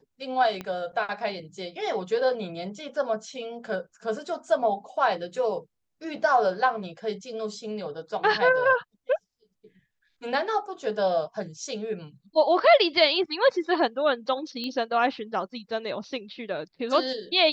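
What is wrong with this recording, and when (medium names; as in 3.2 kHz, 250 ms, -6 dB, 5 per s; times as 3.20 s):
0.61 s: pop -20 dBFS
14.64 s: pop -20 dBFS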